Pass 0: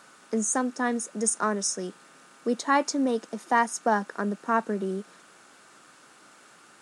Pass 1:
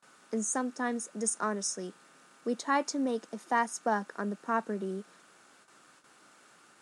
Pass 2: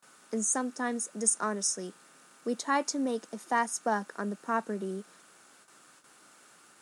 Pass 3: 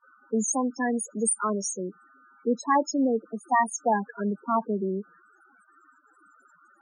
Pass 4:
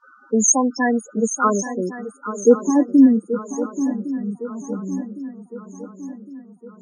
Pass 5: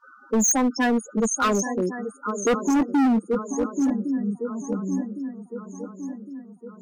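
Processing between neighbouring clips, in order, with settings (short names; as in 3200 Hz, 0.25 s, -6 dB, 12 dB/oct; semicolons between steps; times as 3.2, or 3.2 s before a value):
gate with hold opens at -44 dBFS; gain -5.5 dB
high shelf 8600 Hz +11 dB
loudest bins only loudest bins 8; gain +7 dB
low-pass sweep 5900 Hz -> 120 Hz, 0.66–3.57; swung echo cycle 1.109 s, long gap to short 3:1, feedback 50%, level -12 dB; gain +7.5 dB
hard clip -17 dBFS, distortion -6 dB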